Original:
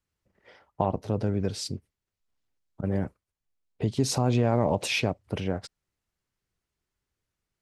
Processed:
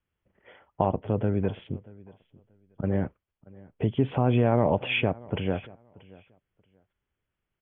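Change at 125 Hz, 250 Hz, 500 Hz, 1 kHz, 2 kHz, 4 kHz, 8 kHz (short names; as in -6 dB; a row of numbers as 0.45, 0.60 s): +1.0 dB, +1.5 dB, +2.0 dB, +1.5 dB, +1.5 dB, -3.5 dB, under -40 dB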